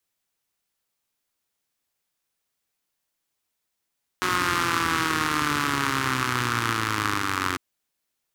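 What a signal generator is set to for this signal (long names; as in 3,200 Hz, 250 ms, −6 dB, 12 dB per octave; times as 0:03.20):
pulse-train model of a four-cylinder engine, changing speed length 3.35 s, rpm 5,500, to 2,700, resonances 120/280/1,200 Hz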